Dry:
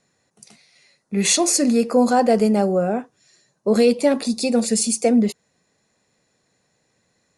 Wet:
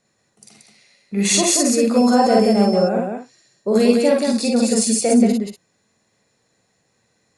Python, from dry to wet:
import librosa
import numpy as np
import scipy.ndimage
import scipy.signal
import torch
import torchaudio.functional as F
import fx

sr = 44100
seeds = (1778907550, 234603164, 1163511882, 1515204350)

y = fx.echo_multitap(x, sr, ms=(45, 54, 180, 240), db=(-3.5, -3.5, -3.0, -11.0))
y = fx.dmg_tone(y, sr, hz=5300.0, level_db=-30.0, at=(1.96, 2.87), fade=0.02)
y = y * librosa.db_to_amplitude(-2.0)